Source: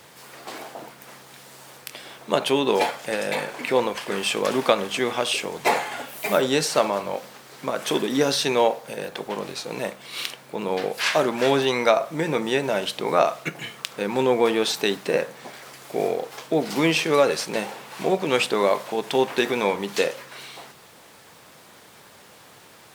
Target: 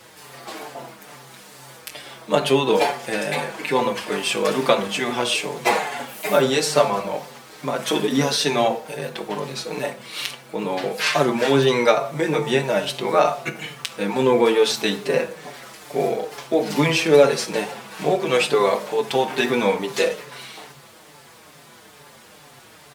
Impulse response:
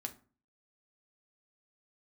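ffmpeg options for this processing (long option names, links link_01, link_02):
-filter_complex "[0:a]asplit=2[link_01][link_02];[1:a]atrim=start_sample=2205,asetrate=26019,aresample=44100[link_03];[link_02][link_03]afir=irnorm=-1:irlink=0,volume=2dB[link_04];[link_01][link_04]amix=inputs=2:normalize=0,asplit=2[link_05][link_06];[link_06]adelay=5.6,afreqshift=-2.3[link_07];[link_05][link_07]amix=inputs=2:normalize=1,volume=-2dB"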